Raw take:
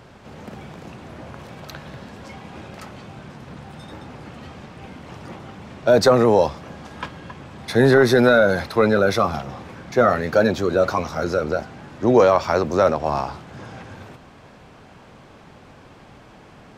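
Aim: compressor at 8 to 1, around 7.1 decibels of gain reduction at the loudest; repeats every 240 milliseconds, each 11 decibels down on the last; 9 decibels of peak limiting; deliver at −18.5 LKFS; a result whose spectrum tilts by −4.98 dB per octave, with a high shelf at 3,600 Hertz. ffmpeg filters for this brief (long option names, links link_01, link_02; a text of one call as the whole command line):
ffmpeg -i in.wav -af "highshelf=frequency=3600:gain=-4.5,acompressor=threshold=-17dB:ratio=8,alimiter=limit=-16dB:level=0:latency=1,aecho=1:1:240|480|720:0.282|0.0789|0.0221,volume=11dB" out.wav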